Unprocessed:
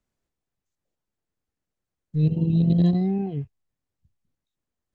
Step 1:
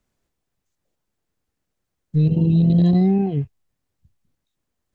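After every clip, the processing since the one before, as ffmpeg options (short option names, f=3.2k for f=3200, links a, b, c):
-af "alimiter=limit=-17dB:level=0:latency=1:release=19,volume=7dB"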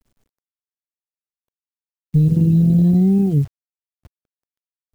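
-filter_complex "[0:a]lowshelf=f=410:g=12,acrossover=split=510|1800[a][b][c];[a]acompressor=threshold=-11dB:ratio=4[d];[b]acompressor=threshold=-41dB:ratio=4[e];[c]acompressor=threshold=-57dB:ratio=4[f];[d][e][f]amix=inputs=3:normalize=0,acrusher=bits=8:dc=4:mix=0:aa=0.000001,volume=-1.5dB"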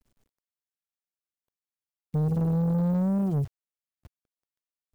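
-af "asoftclip=type=tanh:threshold=-18dB,volume=-4.5dB"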